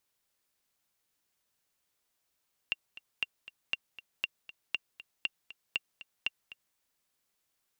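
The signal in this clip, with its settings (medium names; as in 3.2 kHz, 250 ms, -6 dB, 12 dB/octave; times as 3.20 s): metronome 237 bpm, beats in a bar 2, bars 8, 2.77 kHz, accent 16.5 dB -16.5 dBFS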